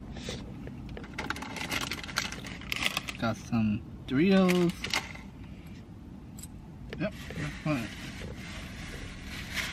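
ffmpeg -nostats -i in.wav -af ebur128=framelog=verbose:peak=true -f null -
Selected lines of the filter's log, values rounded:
Integrated loudness:
  I:         -32.1 LUFS
  Threshold: -42.9 LUFS
Loudness range:
  LRA:         9.0 LU
  Threshold: -52.0 LUFS
  LRA low:   -38.2 LUFS
  LRA high:  -29.1 LUFS
True peak:
  Peak:       -8.4 dBFS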